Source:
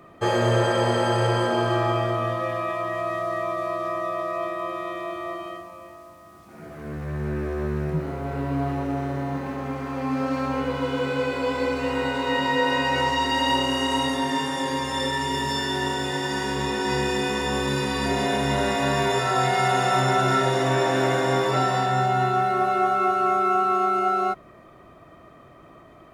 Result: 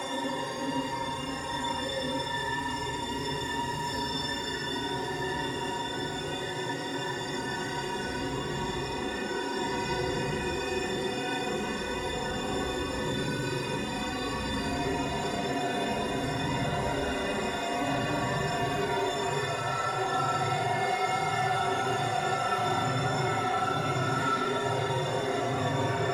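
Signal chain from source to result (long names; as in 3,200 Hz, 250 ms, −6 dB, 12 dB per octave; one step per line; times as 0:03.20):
soft clipping −15 dBFS, distortion −20 dB
extreme stretch with random phases 4.2×, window 0.05 s, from 0:14.57
level −6 dB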